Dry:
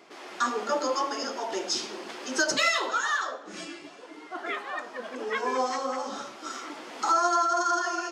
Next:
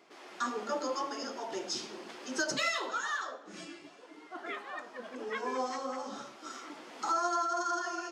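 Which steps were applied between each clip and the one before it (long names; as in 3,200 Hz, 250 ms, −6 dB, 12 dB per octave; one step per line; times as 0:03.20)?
dynamic equaliser 130 Hz, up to +8 dB, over −52 dBFS, Q 0.8
level −7.5 dB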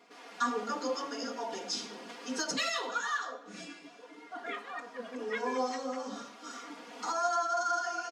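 comb filter 4.2 ms, depth 99%
level −2 dB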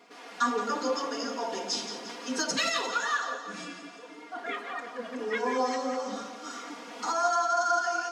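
echo with a time of its own for lows and highs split 420 Hz, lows 118 ms, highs 174 ms, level −10 dB
level +4 dB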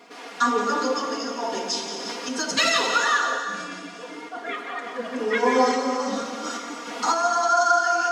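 sample-and-hold tremolo
reverb whose tail is shaped and stops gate 420 ms flat, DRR 6.5 dB
level +9 dB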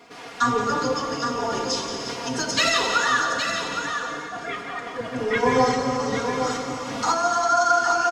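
sub-octave generator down 1 octave, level −6 dB
single-tap delay 816 ms −7 dB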